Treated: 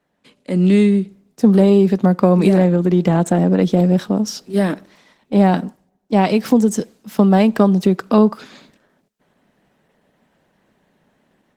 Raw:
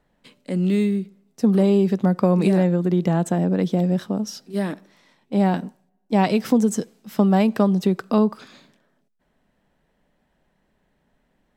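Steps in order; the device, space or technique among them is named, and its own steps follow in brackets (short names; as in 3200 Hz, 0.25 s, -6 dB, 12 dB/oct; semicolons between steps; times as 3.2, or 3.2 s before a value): video call (HPF 130 Hz 12 dB/oct; AGC gain up to 9.5 dB; Opus 16 kbps 48000 Hz)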